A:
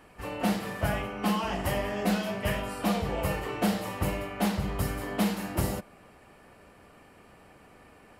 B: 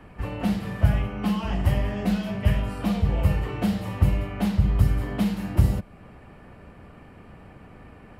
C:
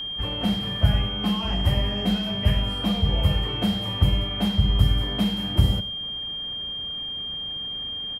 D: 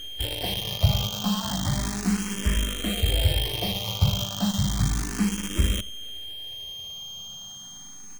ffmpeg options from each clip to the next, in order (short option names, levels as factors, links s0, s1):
-filter_complex "[0:a]bass=f=250:g=10,treble=f=4000:g=-11,acrossover=split=130|3000[s0][s1][s2];[s1]acompressor=threshold=0.00631:ratio=1.5[s3];[s0][s3][s2]amix=inputs=3:normalize=0,volume=1.58"
-filter_complex "[0:a]asplit=2[s0][s1];[s1]adelay=99.13,volume=0.178,highshelf=f=4000:g=-2.23[s2];[s0][s2]amix=inputs=2:normalize=0,aeval=exprs='val(0)+0.0355*sin(2*PI*3200*n/s)':c=same"
-filter_complex "[0:a]acrusher=bits=5:dc=4:mix=0:aa=0.000001,asplit=2[s0][s1];[s1]afreqshift=0.33[s2];[s0][s2]amix=inputs=2:normalize=1"